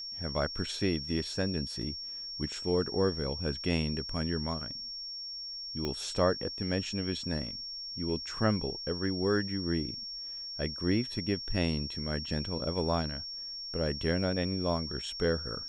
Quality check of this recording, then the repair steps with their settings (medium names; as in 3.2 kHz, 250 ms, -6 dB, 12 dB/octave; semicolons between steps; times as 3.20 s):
whine 5.5 kHz -38 dBFS
1.82 s: dropout 2.7 ms
5.85 s: pop -20 dBFS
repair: de-click; band-stop 5.5 kHz, Q 30; interpolate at 1.82 s, 2.7 ms